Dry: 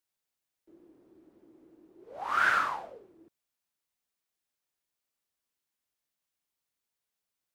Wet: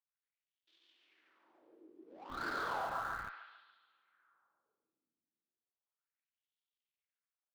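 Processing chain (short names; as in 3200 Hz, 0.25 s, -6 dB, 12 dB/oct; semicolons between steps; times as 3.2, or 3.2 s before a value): switching dead time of 0.16 ms; tilt shelf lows -8.5 dB, about 850 Hz; on a send at -7.5 dB: reverb RT60 2.5 s, pre-delay 3 ms; on the sum: wah 0.34 Hz 260–3500 Hz, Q 4; air absorption 74 m; feedback echo 0.141 s, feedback 38%, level -5 dB; in parallel at -3 dB: Schmitt trigger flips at -47.5 dBFS; on the sum: gain +7 dB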